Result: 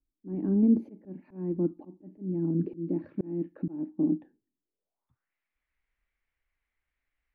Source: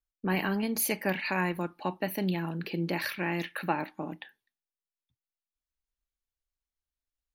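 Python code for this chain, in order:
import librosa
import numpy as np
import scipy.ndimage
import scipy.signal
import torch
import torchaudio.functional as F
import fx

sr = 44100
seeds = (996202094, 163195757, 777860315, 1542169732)

y = fx.filter_sweep_lowpass(x, sr, from_hz=300.0, to_hz=2100.0, start_s=4.62, end_s=5.32, q=4.2)
y = fx.auto_swell(y, sr, attack_ms=632.0)
y = F.gain(torch.from_numpy(y), 7.5).numpy()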